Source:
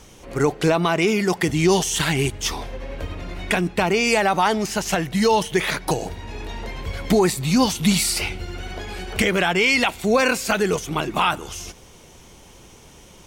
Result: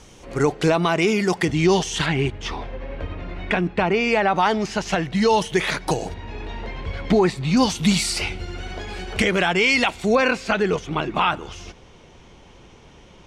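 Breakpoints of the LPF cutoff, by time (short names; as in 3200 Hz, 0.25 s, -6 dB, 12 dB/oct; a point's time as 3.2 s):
8800 Hz
from 1.45 s 5100 Hz
from 2.06 s 2900 Hz
from 4.36 s 4800 Hz
from 5.28 s 8400 Hz
from 6.14 s 3700 Hz
from 7.57 s 7500 Hz
from 10.15 s 3700 Hz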